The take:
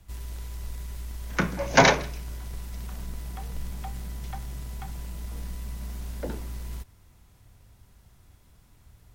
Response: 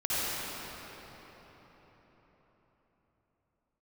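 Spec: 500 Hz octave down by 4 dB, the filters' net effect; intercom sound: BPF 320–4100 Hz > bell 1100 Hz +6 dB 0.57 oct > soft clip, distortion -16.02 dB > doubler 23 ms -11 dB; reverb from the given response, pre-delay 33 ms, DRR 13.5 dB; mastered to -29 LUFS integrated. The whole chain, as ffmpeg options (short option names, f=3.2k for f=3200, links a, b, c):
-filter_complex "[0:a]equalizer=f=500:t=o:g=-5.5,asplit=2[a][b];[1:a]atrim=start_sample=2205,adelay=33[c];[b][c]afir=irnorm=-1:irlink=0,volume=-24.5dB[d];[a][d]amix=inputs=2:normalize=0,highpass=320,lowpass=4.1k,equalizer=f=1.1k:t=o:w=0.57:g=6,asoftclip=threshold=-10.5dB,asplit=2[e][f];[f]adelay=23,volume=-11dB[g];[e][g]amix=inputs=2:normalize=0,volume=-1.5dB"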